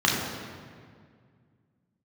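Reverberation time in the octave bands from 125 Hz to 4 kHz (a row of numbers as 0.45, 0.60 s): 2.9, 2.6, 2.1, 1.9, 1.7, 1.3 s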